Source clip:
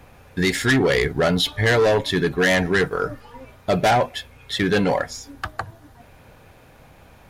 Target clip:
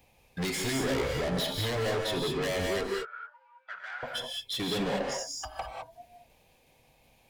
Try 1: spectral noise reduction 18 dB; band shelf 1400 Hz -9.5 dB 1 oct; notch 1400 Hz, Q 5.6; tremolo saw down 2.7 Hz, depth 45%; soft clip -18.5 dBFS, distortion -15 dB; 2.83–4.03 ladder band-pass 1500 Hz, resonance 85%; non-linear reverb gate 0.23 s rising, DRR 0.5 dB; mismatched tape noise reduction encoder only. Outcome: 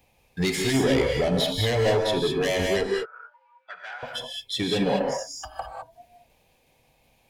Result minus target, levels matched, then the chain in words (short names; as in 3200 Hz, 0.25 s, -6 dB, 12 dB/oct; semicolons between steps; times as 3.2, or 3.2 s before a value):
soft clip: distortion -9 dB
spectral noise reduction 18 dB; band shelf 1400 Hz -9.5 dB 1 oct; notch 1400 Hz, Q 5.6; tremolo saw down 2.7 Hz, depth 45%; soft clip -30 dBFS, distortion -5 dB; 2.83–4.03 ladder band-pass 1500 Hz, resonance 85%; non-linear reverb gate 0.23 s rising, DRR 0.5 dB; mismatched tape noise reduction encoder only